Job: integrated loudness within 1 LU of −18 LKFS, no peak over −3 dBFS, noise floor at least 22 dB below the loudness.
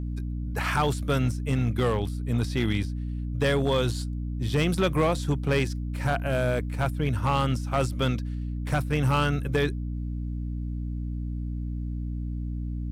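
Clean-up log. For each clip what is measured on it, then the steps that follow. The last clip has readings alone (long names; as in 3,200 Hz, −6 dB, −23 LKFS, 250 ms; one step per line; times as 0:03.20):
share of clipped samples 0.8%; peaks flattened at −17.0 dBFS; mains hum 60 Hz; hum harmonics up to 300 Hz; level of the hum −29 dBFS; integrated loudness −27.5 LKFS; sample peak −17.0 dBFS; target loudness −18.0 LKFS
→ clipped peaks rebuilt −17 dBFS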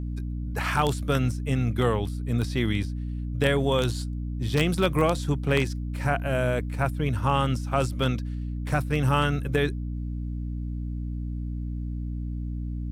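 share of clipped samples 0.0%; mains hum 60 Hz; hum harmonics up to 300 Hz; level of the hum −28 dBFS
→ hum removal 60 Hz, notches 5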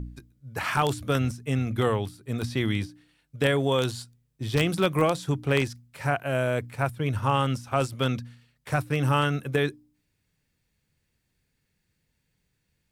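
mains hum none found; integrated loudness −27.0 LKFS; sample peak −7.5 dBFS; target loudness −18.0 LKFS
→ level +9 dB
brickwall limiter −3 dBFS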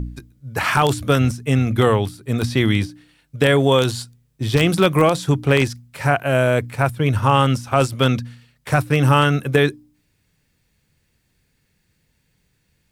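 integrated loudness −18.5 LKFS; sample peak −3.0 dBFS; background noise floor −66 dBFS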